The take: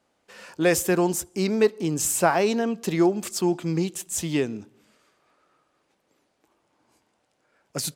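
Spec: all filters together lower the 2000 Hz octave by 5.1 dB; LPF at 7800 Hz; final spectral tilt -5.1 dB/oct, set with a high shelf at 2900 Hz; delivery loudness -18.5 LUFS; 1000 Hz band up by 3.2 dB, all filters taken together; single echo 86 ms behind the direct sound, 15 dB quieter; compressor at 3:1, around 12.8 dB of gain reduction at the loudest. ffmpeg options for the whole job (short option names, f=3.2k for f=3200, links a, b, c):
-af "lowpass=7.8k,equalizer=f=1k:t=o:g=6.5,equalizer=f=2k:t=o:g=-7.5,highshelf=f=2.9k:g=-5.5,acompressor=threshold=-32dB:ratio=3,aecho=1:1:86:0.178,volume=15.5dB"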